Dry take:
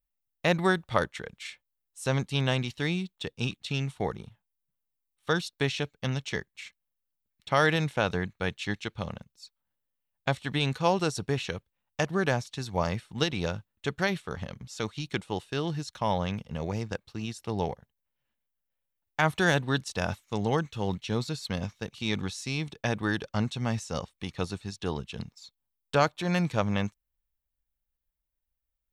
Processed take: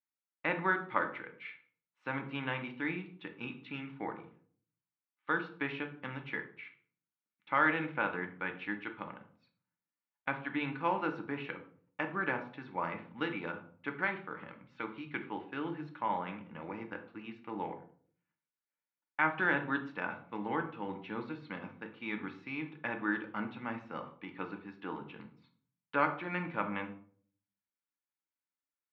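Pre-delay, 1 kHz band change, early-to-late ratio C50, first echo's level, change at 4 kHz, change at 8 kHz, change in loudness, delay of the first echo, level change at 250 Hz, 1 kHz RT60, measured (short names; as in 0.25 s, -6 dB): 3 ms, -3.5 dB, 11.0 dB, none, -16.0 dB, under -35 dB, -6.5 dB, none, -7.0 dB, 0.45 s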